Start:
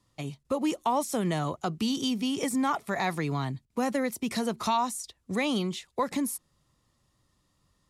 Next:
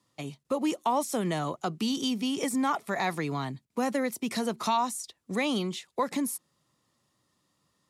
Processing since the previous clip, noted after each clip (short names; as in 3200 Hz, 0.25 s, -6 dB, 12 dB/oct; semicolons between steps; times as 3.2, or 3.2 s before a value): HPF 160 Hz 12 dB/oct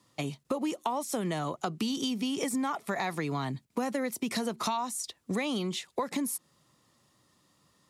compressor 5:1, threshold -35 dBFS, peak gain reduction 12 dB; gain +6 dB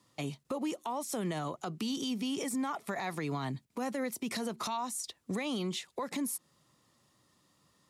limiter -24.5 dBFS, peak gain reduction 7.5 dB; gain -2 dB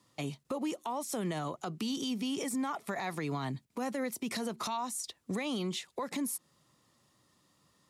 nothing audible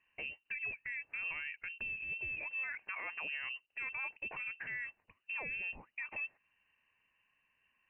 inverted band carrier 2900 Hz; gain -6 dB